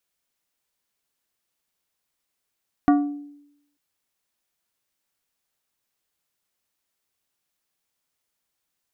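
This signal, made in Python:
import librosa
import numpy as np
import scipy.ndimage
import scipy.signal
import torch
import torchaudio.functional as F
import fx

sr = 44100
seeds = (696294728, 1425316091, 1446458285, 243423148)

y = fx.strike_glass(sr, length_s=0.89, level_db=-11.5, body='plate', hz=289.0, decay_s=0.82, tilt_db=6.0, modes=5)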